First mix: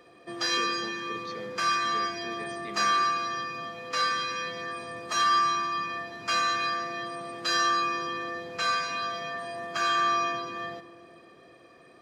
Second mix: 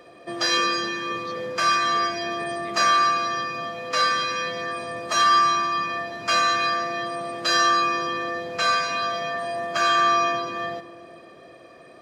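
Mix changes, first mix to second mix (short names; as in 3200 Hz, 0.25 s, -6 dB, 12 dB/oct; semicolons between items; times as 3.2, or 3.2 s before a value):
background +5.5 dB; master: add bell 610 Hz +8 dB 0.31 oct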